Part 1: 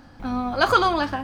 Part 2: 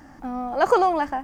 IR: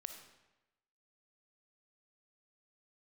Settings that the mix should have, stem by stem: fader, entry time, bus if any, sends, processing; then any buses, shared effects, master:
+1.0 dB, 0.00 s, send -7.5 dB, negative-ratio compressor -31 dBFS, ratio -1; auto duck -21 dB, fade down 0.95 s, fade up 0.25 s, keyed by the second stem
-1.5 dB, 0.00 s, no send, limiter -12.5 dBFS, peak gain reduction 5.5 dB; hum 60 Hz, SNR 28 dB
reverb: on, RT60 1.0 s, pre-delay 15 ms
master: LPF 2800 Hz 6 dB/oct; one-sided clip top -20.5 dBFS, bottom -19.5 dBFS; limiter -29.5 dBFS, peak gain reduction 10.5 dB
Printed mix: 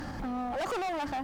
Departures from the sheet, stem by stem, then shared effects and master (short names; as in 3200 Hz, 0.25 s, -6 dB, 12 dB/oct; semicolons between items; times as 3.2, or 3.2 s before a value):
stem 2 -1.5 dB -> +7.0 dB; master: missing LPF 2800 Hz 6 dB/oct